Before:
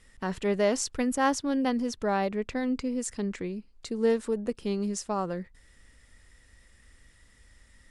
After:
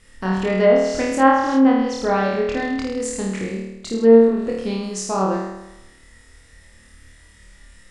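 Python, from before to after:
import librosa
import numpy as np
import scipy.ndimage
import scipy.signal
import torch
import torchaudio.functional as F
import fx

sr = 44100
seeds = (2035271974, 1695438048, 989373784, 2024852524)

y = fx.room_flutter(x, sr, wall_m=4.5, rt60_s=0.95)
y = fx.env_lowpass_down(y, sr, base_hz=2100.0, full_db=-16.0)
y = y * librosa.db_to_amplitude(5.0)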